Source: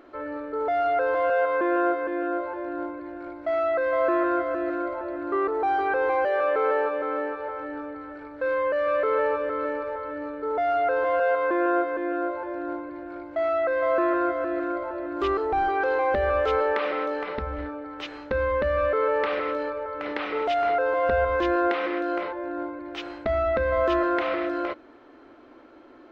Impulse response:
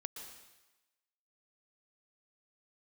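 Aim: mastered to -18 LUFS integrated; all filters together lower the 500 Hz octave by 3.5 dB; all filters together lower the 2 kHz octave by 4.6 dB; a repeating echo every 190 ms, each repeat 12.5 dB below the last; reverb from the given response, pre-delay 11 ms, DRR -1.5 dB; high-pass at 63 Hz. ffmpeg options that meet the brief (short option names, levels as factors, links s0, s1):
-filter_complex "[0:a]highpass=63,equalizer=f=500:t=o:g=-4,equalizer=f=2000:t=o:g=-6,aecho=1:1:190|380|570:0.237|0.0569|0.0137,asplit=2[s0][s1];[1:a]atrim=start_sample=2205,adelay=11[s2];[s1][s2]afir=irnorm=-1:irlink=0,volume=1.58[s3];[s0][s3]amix=inputs=2:normalize=0,volume=2.66"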